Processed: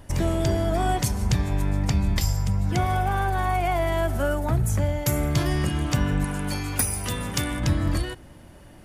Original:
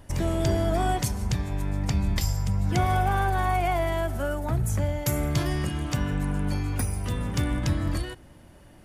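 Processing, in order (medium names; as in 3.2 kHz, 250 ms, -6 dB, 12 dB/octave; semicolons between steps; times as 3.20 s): gain riding 0.5 s; 6.24–7.60 s: tilt EQ +2 dB/octave; trim +2.5 dB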